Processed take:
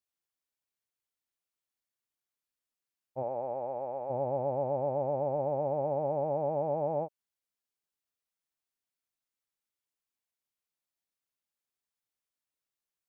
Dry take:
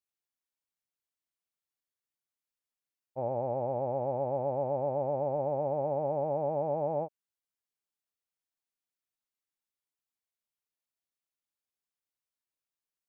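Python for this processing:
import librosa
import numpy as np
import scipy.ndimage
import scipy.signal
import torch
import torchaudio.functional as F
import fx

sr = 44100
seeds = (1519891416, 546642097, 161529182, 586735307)

y = fx.highpass(x, sr, hz=fx.line((3.22, 430.0), (4.09, 890.0)), slope=6, at=(3.22, 4.09), fade=0.02)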